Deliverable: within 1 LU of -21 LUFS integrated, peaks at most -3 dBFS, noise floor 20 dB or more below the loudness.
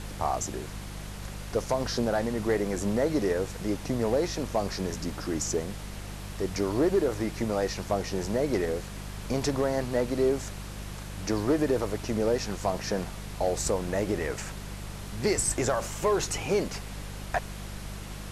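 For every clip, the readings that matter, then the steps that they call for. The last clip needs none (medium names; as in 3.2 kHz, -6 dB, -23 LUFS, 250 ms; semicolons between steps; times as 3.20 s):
hum 50 Hz; highest harmonic 200 Hz; hum level -37 dBFS; noise floor -40 dBFS; noise floor target -50 dBFS; loudness -29.5 LUFS; peak level -15.0 dBFS; loudness target -21.0 LUFS
-> de-hum 50 Hz, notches 4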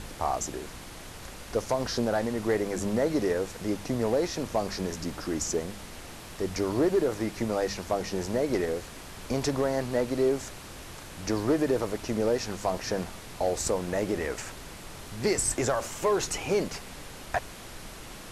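hum not found; noise floor -44 dBFS; noise floor target -50 dBFS
-> noise print and reduce 6 dB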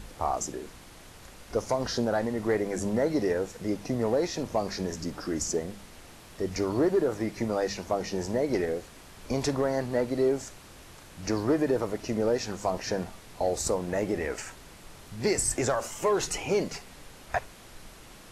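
noise floor -50 dBFS; loudness -29.5 LUFS; peak level -16.0 dBFS; loudness target -21.0 LUFS
-> trim +8.5 dB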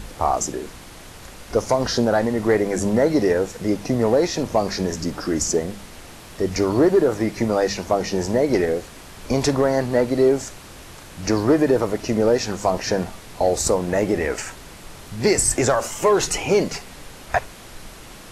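loudness -21.0 LUFS; peak level -7.5 dBFS; noise floor -41 dBFS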